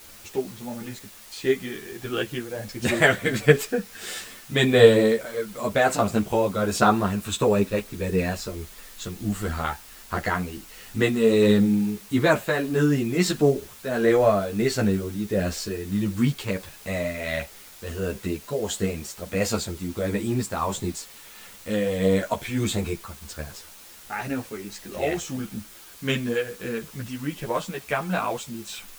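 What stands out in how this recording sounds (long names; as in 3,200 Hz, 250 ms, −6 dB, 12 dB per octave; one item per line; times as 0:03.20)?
tremolo triangle 1.5 Hz, depth 55%
a quantiser's noise floor 8 bits, dither triangular
a shimmering, thickened sound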